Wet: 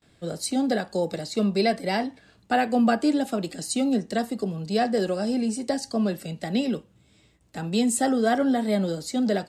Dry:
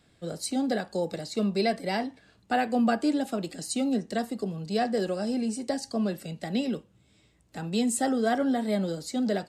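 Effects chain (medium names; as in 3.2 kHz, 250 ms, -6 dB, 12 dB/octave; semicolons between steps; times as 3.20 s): gate with hold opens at -54 dBFS; trim +3.5 dB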